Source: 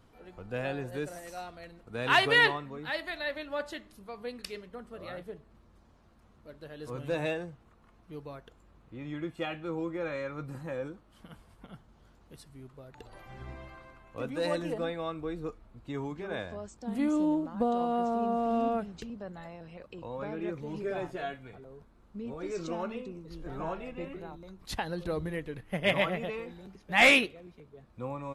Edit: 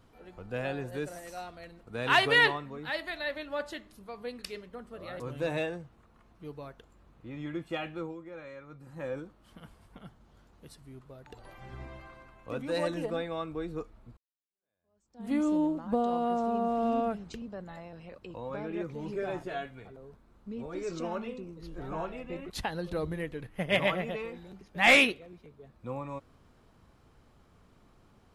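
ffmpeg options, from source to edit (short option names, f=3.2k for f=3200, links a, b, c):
-filter_complex "[0:a]asplit=6[a][b][c][d][e][f];[a]atrim=end=5.202[g];[b]atrim=start=6.878:end=9.83,asetpts=PTS-STARTPTS,afade=t=out:st=2.782:d=0.17:silence=0.316228[h];[c]atrim=start=9.83:end=10.56,asetpts=PTS-STARTPTS,volume=-10dB[i];[d]atrim=start=10.56:end=15.85,asetpts=PTS-STARTPTS,afade=t=in:d=0.17:silence=0.316228,afade=t=out:st=5.286:d=0.004:c=hsin[j];[e]atrim=start=15.85:end=24.182,asetpts=PTS-STARTPTS,afade=t=in:d=1.14:c=exp[k];[f]atrim=start=24.638[l];[h][i][j][k]concat=n=4:v=0:a=1[m];[g][m]acrossfade=d=0.004:c1=hsin:c2=hsin[n];[n][l]acrossfade=d=0.004:c1=hsin:c2=hsin"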